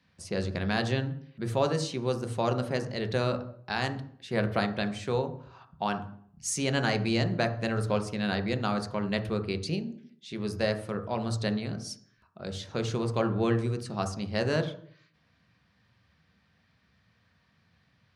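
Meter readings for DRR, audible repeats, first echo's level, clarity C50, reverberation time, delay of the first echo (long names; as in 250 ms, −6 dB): 7.0 dB, no echo audible, no echo audible, 11.5 dB, 0.60 s, no echo audible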